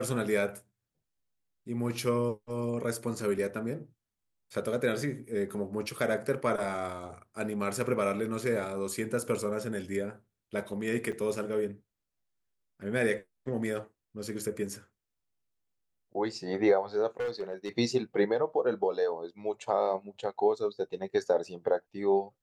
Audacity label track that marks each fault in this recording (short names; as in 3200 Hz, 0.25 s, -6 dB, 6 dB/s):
11.120000	11.130000	gap 6.4 ms
17.200000	17.690000	clipped -29 dBFS